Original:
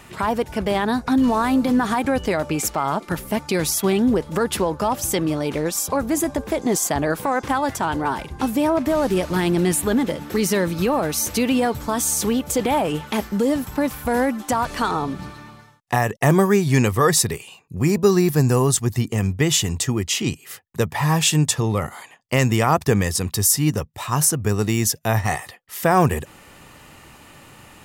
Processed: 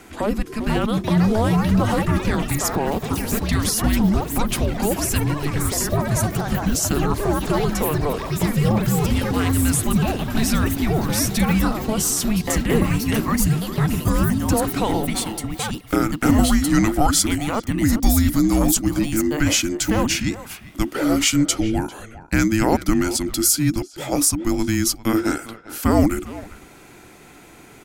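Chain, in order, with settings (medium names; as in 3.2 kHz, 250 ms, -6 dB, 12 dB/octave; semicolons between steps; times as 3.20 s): ever faster or slower copies 542 ms, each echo +5 st, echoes 3, each echo -6 dB; speakerphone echo 400 ms, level -14 dB; frequency shift -440 Hz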